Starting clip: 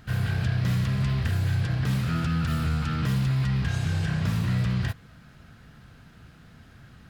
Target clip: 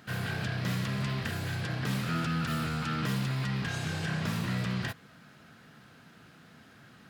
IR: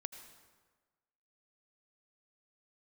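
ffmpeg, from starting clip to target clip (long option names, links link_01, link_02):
-af "highpass=200"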